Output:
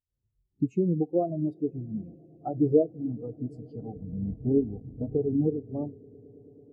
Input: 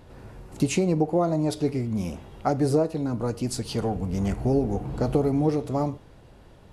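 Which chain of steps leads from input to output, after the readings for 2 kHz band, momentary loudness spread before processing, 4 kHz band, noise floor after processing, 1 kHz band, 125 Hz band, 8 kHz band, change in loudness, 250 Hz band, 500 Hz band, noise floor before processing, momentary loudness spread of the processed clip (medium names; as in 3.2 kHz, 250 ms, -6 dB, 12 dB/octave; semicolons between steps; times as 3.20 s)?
under -30 dB, 7 LU, under -35 dB, -79 dBFS, -10.5 dB, -6.0 dB, under -35 dB, -3.5 dB, -3.0 dB, -3.0 dB, -51 dBFS, 14 LU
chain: echo with a slow build-up 110 ms, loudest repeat 8, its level -17.5 dB; spectral contrast expander 2.5:1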